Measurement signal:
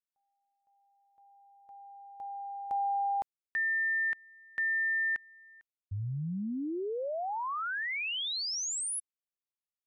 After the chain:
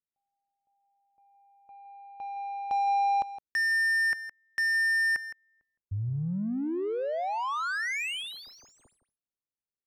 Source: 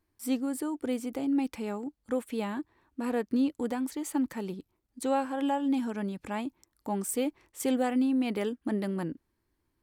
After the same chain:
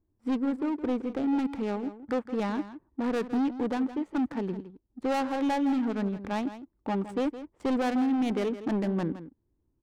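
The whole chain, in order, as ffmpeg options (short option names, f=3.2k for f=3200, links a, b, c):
-filter_complex "[0:a]volume=27.5dB,asoftclip=hard,volume=-27.5dB,adynamicsmooth=sensitivity=7:basefreq=570,asplit=2[a][b];[b]aecho=0:1:164:0.224[c];[a][c]amix=inputs=2:normalize=0,volume=4dB"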